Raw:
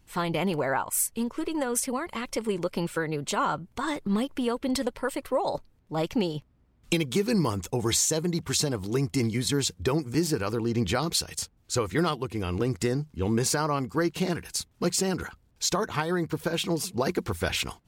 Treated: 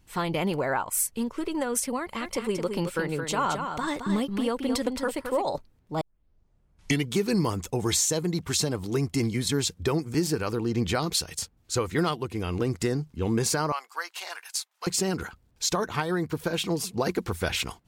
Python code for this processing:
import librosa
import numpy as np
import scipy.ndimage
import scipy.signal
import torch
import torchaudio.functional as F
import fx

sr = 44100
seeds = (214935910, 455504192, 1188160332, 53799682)

y = fx.echo_single(x, sr, ms=219, db=-6.5, at=(2.2, 5.44), fade=0.02)
y = fx.highpass(y, sr, hz=790.0, slope=24, at=(13.72, 14.87))
y = fx.edit(y, sr, fx.tape_start(start_s=6.01, length_s=1.1), tone=tone)